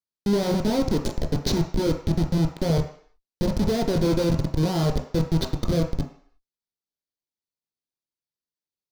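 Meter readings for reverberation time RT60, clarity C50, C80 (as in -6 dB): 0.55 s, 8.5 dB, 11.5 dB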